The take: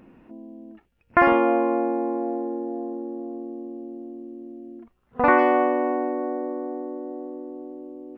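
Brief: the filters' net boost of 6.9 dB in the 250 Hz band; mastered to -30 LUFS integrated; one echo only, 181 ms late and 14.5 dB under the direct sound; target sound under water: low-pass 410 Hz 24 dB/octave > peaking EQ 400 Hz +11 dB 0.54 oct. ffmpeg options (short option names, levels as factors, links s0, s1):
-af "lowpass=f=410:w=0.5412,lowpass=f=410:w=1.3066,equalizer=f=250:t=o:g=3.5,equalizer=f=400:t=o:w=0.54:g=11,aecho=1:1:181:0.188,volume=0.355"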